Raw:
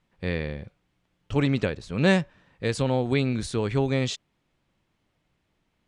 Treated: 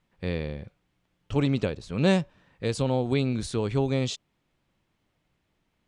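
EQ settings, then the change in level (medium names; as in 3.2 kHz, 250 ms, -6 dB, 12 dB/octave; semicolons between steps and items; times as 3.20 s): dynamic bell 1.8 kHz, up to -7 dB, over -46 dBFS, Q 1.9; -1.0 dB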